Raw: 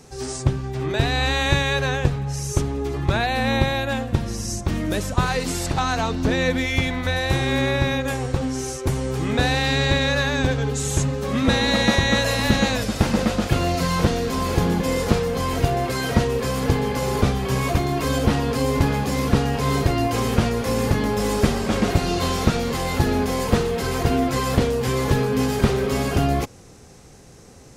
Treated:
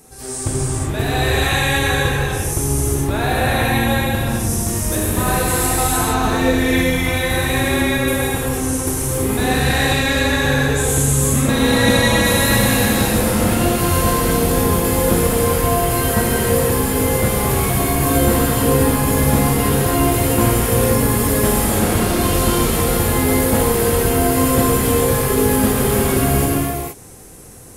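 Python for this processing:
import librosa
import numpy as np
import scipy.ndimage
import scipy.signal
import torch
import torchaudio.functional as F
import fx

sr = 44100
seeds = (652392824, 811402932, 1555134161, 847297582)

y = fx.high_shelf_res(x, sr, hz=7900.0, db=13.0, q=1.5)
y = fx.rev_gated(y, sr, seeds[0], gate_ms=500, shape='flat', drr_db=-7.5)
y = y * 10.0 ** (-3.0 / 20.0)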